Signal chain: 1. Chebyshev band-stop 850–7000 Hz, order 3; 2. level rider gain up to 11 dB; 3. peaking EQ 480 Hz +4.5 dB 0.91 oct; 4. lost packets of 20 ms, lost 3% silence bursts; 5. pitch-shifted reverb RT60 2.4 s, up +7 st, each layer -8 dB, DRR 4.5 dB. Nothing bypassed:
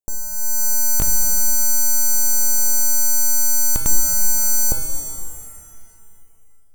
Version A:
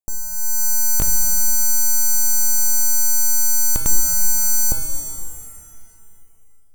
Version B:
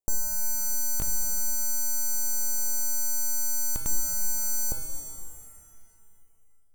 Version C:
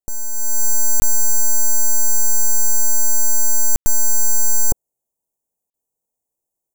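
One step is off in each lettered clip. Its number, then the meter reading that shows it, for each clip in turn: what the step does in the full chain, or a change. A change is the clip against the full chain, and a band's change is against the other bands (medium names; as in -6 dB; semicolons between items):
3, 500 Hz band -2.5 dB; 2, momentary loudness spread change -4 LU; 5, crest factor change -6.0 dB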